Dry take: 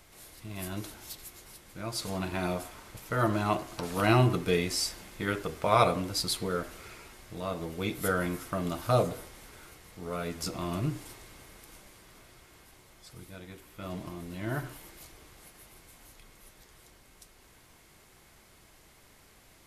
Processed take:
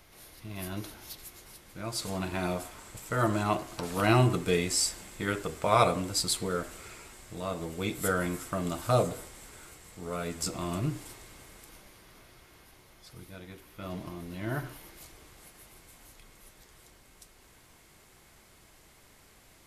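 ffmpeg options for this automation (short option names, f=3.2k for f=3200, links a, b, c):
-af "asetnsamples=n=441:p=0,asendcmd='1.17 equalizer g -2;1.84 equalizer g 4.5;2.79 equalizer g 12;3.43 equalizer g 4;4.15 equalizer g 10.5;10.78 equalizer g 4.5;11.69 equalizer g -5.5;14.96 equalizer g 2',equalizer=f=7.8k:t=o:w=0.28:g=-8"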